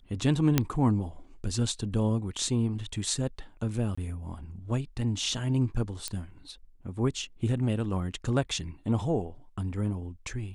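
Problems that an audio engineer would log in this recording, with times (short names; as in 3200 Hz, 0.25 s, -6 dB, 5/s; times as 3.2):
0.58 pop -7 dBFS
3.95–3.98 gap 25 ms
6.08 pop -17 dBFS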